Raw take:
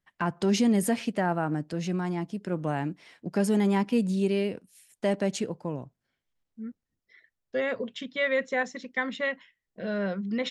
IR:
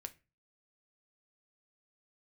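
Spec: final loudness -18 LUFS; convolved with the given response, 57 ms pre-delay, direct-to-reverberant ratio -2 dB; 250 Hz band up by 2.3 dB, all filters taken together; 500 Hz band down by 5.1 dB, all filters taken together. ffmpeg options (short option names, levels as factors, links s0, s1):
-filter_complex "[0:a]equalizer=f=250:t=o:g=4.5,equalizer=f=500:t=o:g=-8,asplit=2[s0][s1];[1:a]atrim=start_sample=2205,adelay=57[s2];[s1][s2]afir=irnorm=-1:irlink=0,volume=2.11[s3];[s0][s3]amix=inputs=2:normalize=0,volume=2.11"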